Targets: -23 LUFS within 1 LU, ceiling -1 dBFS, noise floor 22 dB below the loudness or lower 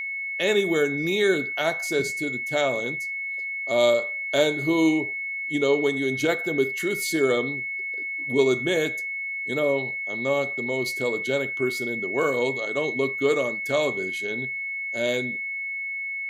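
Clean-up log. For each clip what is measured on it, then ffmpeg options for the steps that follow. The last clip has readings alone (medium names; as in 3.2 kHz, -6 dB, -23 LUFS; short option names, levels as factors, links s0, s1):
steady tone 2.2 kHz; tone level -28 dBFS; loudness -24.5 LUFS; peak level -7.5 dBFS; loudness target -23.0 LUFS
-> -af "bandreject=f=2200:w=30"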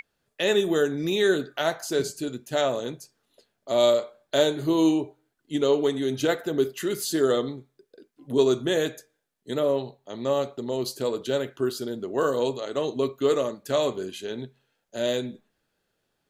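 steady tone not found; loudness -26.0 LUFS; peak level -7.5 dBFS; loudness target -23.0 LUFS
-> -af "volume=1.41"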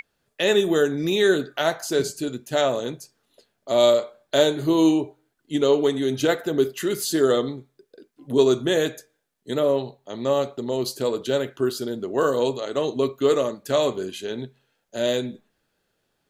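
loudness -23.0 LUFS; peak level -4.5 dBFS; noise floor -74 dBFS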